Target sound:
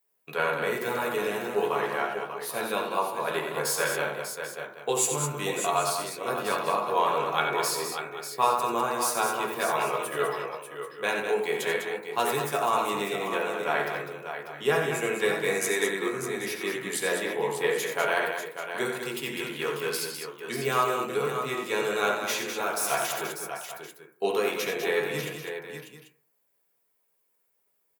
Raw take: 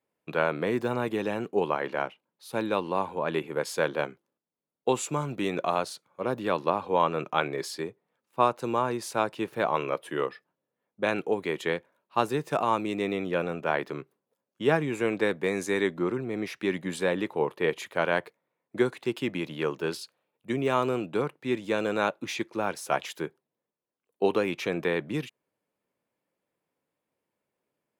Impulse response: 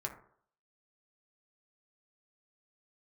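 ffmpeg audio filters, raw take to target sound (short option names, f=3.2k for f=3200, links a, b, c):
-filter_complex "[0:a]aemphasis=mode=production:type=riaa,aecho=1:1:68|89|201|593|789:0.251|0.376|0.447|0.376|0.188[a];[1:a]atrim=start_sample=2205,asetrate=48510,aresample=44100[b];[a][b]afir=irnorm=-1:irlink=0"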